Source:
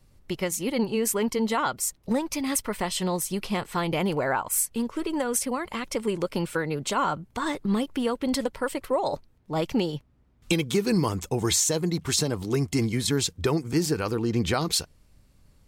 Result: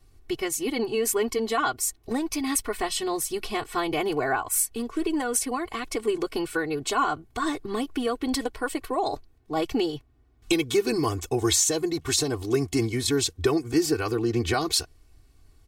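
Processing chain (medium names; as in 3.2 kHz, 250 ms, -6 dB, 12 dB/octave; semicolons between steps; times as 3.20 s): comb 2.7 ms, depth 97%; trim -2 dB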